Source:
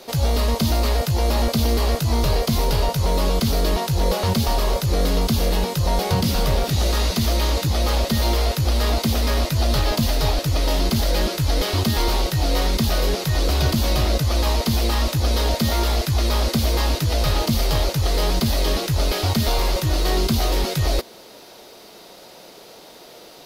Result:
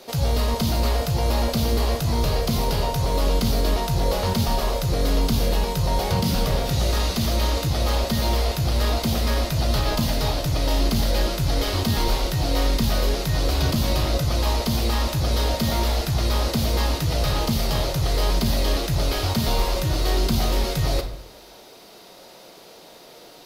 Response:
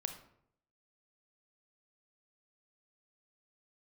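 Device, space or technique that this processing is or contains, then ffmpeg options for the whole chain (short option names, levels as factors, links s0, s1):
bathroom: -filter_complex "[1:a]atrim=start_sample=2205[s0];[0:a][s0]afir=irnorm=-1:irlink=0,volume=0.841"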